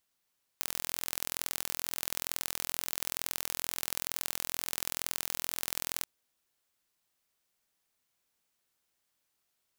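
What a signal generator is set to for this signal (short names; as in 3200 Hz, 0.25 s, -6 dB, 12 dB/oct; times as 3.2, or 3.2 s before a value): pulse train 42.2/s, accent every 2, -4.5 dBFS 5.43 s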